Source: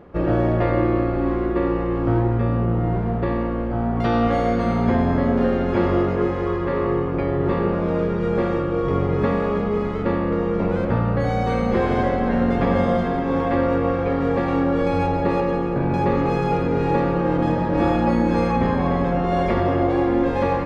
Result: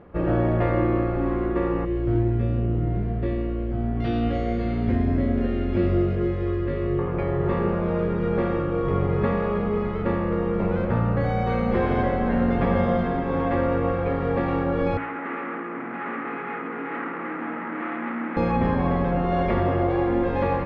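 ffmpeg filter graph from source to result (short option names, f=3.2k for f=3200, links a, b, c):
-filter_complex "[0:a]asettb=1/sr,asplit=3[a][b][c];[a]atrim=end=1.854[d];[b]atrim=start=1.85:end=6.99,asetpts=PTS-STARTPTS,afade=t=in:d=0.004:c=qsin,afade=t=out:st=5.136:d=0.004:c=qsin,equalizer=f=1k:w=0.89:g=-14,asplit=2[e][f];[f]adelay=20,volume=-4dB[g];[e][g]amix=inputs=2:normalize=0,atrim=end_sample=226674[h];[c]atrim=start=6.986[i];[d][h]acrossfade=d=0.004:c1=hsin:c2=qsin[j];[j][i]acrossfade=d=0.004:c1=qsin:c2=hsin,asettb=1/sr,asplit=3[k][l][m];[k]atrim=end=14.974[n];[l]atrim=start=14.97:end=18.37,asetpts=PTS-STARTPTS,afade=t=in:d=0.004:c=qsin,afade=t=out:st=3.396:d=0.004:c=qsin,asoftclip=type=hard:threshold=-24.5dB,highpass=f=250:w=0.5412,highpass=f=250:w=1.3066,equalizer=f=250:t=q:w=4:g=7,equalizer=f=380:t=q:w=4:g=-4,equalizer=f=560:t=q:w=4:g=-9,equalizer=f=880:t=q:w=4:g=-3,equalizer=f=1.3k:t=q:w=4:g=7,equalizer=f=2k:t=q:w=4:g=7,lowpass=f=2.4k:w=0.5412,lowpass=f=2.4k:w=1.3066[o];[m]atrim=start=18.366[p];[n][o]acrossfade=d=0.004:c1=hsin:c2=qsin[q];[q][p]acrossfade=d=0.004:c1=qsin:c2=hsin,lowpass=2.9k,equalizer=f=600:w=0.34:g=-3,bandreject=f=55.27:t=h:w=4,bandreject=f=110.54:t=h:w=4,bandreject=f=165.81:t=h:w=4,bandreject=f=221.08:t=h:w=4,bandreject=f=276.35:t=h:w=4,bandreject=f=331.62:t=h:w=4,bandreject=f=386.89:t=h:w=4"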